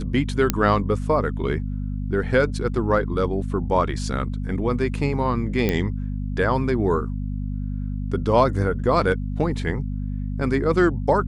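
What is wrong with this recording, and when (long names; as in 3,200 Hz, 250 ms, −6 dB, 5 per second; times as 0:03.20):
mains hum 50 Hz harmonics 5 −27 dBFS
0:00.50: click −3 dBFS
0:05.69: click −9 dBFS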